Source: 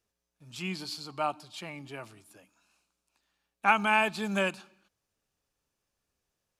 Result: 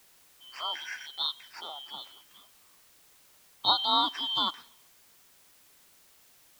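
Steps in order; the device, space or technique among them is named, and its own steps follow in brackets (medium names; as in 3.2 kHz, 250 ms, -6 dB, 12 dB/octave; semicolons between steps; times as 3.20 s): split-band scrambled radio (four frequency bands reordered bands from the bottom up 2413; band-pass 360–3300 Hz; white noise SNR 25 dB); trim +2.5 dB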